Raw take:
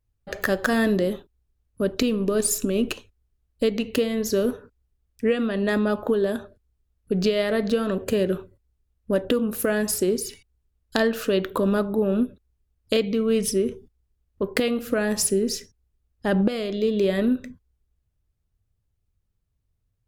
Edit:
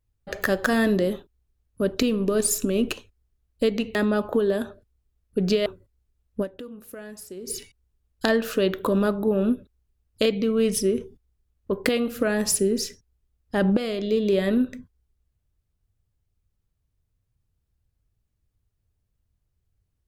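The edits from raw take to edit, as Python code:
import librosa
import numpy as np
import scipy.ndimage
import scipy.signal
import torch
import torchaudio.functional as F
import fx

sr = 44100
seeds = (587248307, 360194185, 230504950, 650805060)

y = fx.edit(x, sr, fx.cut(start_s=3.95, length_s=1.74),
    fx.cut(start_s=7.4, length_s=0.97),
    fx.fade_down_up(start_s=9.12, length_s=1.09, db=-16.5, fade_s=0.26, curve='exp'), tone=tone)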